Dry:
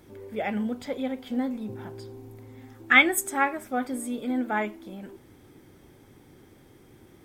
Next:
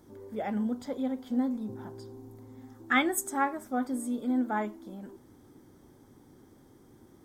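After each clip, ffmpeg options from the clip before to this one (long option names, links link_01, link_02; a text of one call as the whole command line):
ffmpeg -i in.wav -af "equalizer=frequency=250:width_type=o:width=0.67:gain=5,equalizer=frequency=1000:width_type=o:width=0.67:gain=4,equalizer=frequency=2500:width_type=o:width=0.67:gain=-11,equalizer=frequency=6300:width_type=o:width=0.67:gain=3,volume=-5dB" out.wav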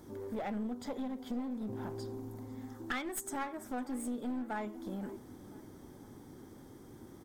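ffmpeg -i in.wav -filter_complex "[0:a]acompressor=threshold=-38dB:ratio=6,aeval=exprs='clip(val(0),-1,0.00841)':channel_layout=same,asplit=2[link_01][link_02];[link_02]adelay=506,lowpass=frequency=3400:poles=1,volume=-19dB,asplit=2[link_03][link_04];[link_04]adelay=506,lowpass=frequency=3400:poles=1,volume=0.5,asplit=2[link_05][link_06];[link_06]adelay=506,lowpass=frequency=3400:poles=1,volume=0.5,asplit=2[link_07][link_08];[link_08]adelay=506,lowpass=frequency=3400:poles=1,volume=0.5[link_09];[link_01][link_03][link_05][link_07][link_09]amix=inputs=5:normalize=0,volume=4dB" out.wav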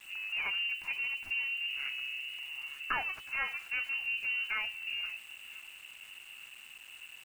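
ffmpeg -i in.wav -af "lowpass=frequency=2600:width_type=q:width=0.5098,lowpass=frequency=2600:width_type=q:width=0.6013,lowpass=frequency=2600:width_type=q:width=0.9,lowpass=frequency=2600:width_type=q:width=2.563,afreqshift=-3000,aemphasis=mode=reproduction:type=bsi,aeval=exprs='val(0)*gte(abs(val(0)),0.00158)':channel_layout=same,volume=5dB" out.wav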